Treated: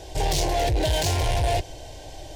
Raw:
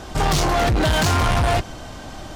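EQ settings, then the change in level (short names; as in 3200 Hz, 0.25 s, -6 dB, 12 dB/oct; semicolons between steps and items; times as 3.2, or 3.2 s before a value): fixed phaser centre 520 Hz, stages 4; -2.0 dB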